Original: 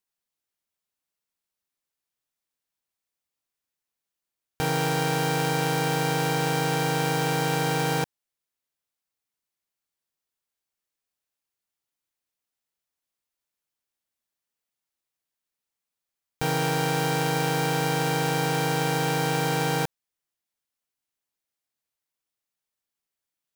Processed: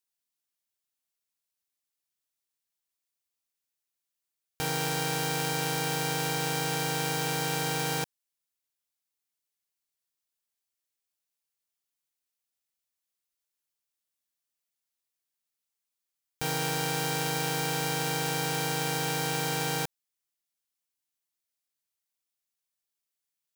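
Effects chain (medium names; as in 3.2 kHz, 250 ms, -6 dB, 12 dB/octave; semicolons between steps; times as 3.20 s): treble shelf 2.5 kHz +8.5 dB; trim -7 dB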